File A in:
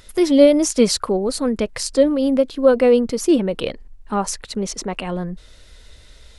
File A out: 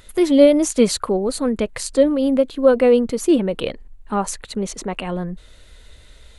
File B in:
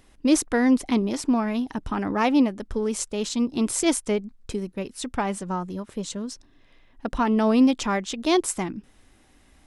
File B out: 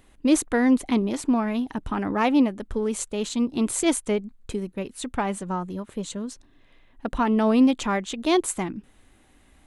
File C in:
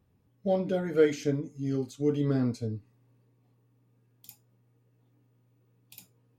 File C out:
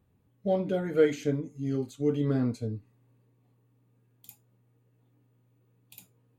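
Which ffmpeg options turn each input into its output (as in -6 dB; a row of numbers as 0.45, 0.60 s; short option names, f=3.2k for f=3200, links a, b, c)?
-af "equalizer=f=5.3k:t=o:w=0.33:g=-9"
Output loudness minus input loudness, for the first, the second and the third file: 0.0, 0.0, 0.0 LU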